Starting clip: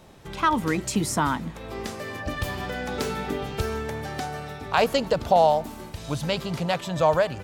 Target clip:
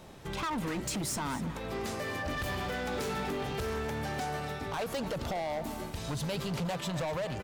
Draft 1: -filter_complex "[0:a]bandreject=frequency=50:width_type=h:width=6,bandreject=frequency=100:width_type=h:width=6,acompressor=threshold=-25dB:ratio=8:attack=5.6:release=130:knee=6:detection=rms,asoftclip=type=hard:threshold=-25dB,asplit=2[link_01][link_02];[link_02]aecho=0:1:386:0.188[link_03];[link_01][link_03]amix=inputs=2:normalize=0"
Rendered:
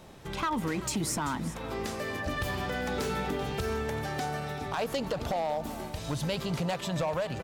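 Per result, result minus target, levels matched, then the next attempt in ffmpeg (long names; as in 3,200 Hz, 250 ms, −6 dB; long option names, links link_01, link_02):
echo 138 ms late; hard clipping: distortion −9 dB
-filter_complex "[0:a]bandreject=frequency=50:width_type=h:width=6,bandreject=frequency=100:width_type=h:width=6,acompressor=threshold=-25dB:ratio=8:attack=5.6:release=130:knee=6:detection=rms,asoftclip=type=hard:threshold=-25dB,asplit=2[link_01][link_02];[link_02]aecho=0:1:248:0.188[link_03];[link_01][link_03]amix=inputs=2:normalize=0"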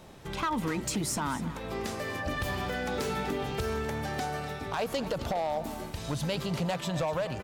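hard clipping: distortion −9 dB
-filter_complex "[0:a]bandreject=frequency=50:width_type=h:width=6,bandreject=frequency=100:width_type=h:width=6,acompressor=threshold=-25dB:ratio=8:attack=5.6:release=130:knee=6:detection=rms,asoftclip=type=hard:threshold=-31dB,asplit=2[link_01][link_02];[link_02]aecho=0:1:248:0.188[link_03];[link_01][link_03]amix=inputs=2:normalize=0"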